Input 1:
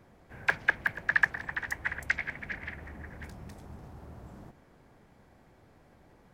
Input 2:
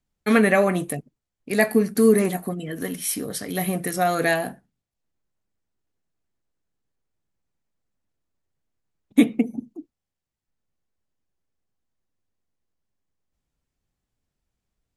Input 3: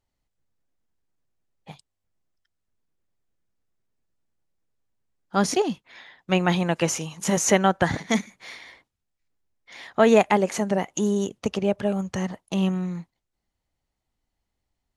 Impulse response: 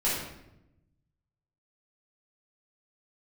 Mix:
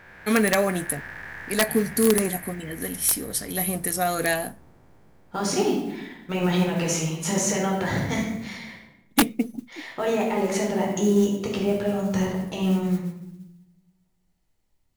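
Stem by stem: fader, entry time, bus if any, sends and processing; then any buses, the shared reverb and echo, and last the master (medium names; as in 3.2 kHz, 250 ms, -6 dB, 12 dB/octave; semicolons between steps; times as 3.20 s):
-0.5 dB, 0.00 s, send -18.5 dB, spectral blur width 1080 ms
-3.5 dB, 0.00 s, no send, treble shelf 5.6 kHz +11 dB
-6.0 dB, 0.00 s, send -3 dB, peak limiter -16.5 dBFS, peak gain reduction 12 dB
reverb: on, RT60 0.85 s, pre-delay 6 ms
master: modulation noise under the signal 27 dB; integer overflow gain 9.5 dB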